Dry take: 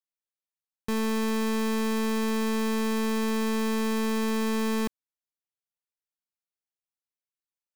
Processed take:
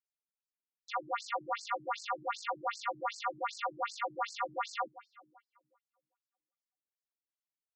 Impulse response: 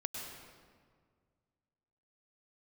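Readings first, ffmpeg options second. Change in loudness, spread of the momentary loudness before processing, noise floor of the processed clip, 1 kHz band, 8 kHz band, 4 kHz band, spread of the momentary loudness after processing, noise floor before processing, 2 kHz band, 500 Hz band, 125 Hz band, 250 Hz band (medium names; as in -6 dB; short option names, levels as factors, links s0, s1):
-9.5 dB, 2 LU, under -85 dBFS, 0.0 dB, -12.5 dB, -9.0 dB, 3 LU, under -85 dBFS, -7.0 dB, -12.0 dB, no reading, -30.5 dB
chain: -filter_complex "[0:a]aeval=exprs='val(0)*sin(2*PI*970*n/s)':c=same,asplit=2[s0][s1];[1:a]atrim=start_sample=2205,lowpass=3800[s2];[s1][s2]afir=irnorm=-1:irlink=0,volume=0.299[s3];[s0][s3]amix=inputs=2:normalize=0,afftfilt=real='re*between(b*sr/1024,220*pow(6100/220,0.5+0.5*sin(2*PI*2.6*pts/sr))/1.41,220*pow(6100/220,0.5+0.5*sin(2*PI*2.6*pts/sr))*1.41)':imag='im*between(b*sr/1024,220*pow(6100/220,0.5+0.5*sin(2*PI*2.6*pts/sr))/1.41,220*pow(6100/220,0.5+0.5*sin(2*PI*2.6*pts/sr))*1.41)':win_size=1024:overlap=0.75"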